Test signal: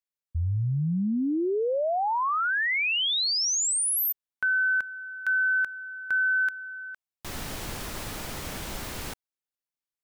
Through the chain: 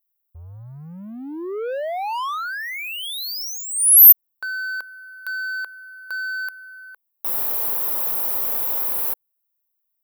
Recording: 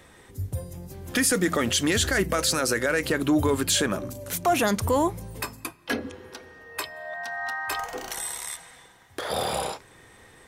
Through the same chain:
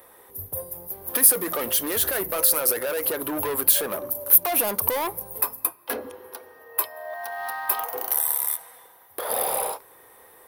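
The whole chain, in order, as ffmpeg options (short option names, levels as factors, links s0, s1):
-filter_complex "[0:a]asplit=2[s0][s1];[s1]aeval=exprs='sgn(val(0))*max(abs(val(0))-0.01,0)':c=same,volume=0.355[s2];[s0][s2]amix=inputs=2:normalize=0,equalizer=f=500:t=o:w=1:g=9,equalizer=f=1000:t=o:w=1:g=10,equalizer=f=8000:t=o:w=1:g=-5,asoftclip=type=tanh:threshold=0.158,aexciter=amount=14.7:drive=3.8:freq=10000,bass=f=250:g=-7,treble=f=4000:g=5,volume=0.422"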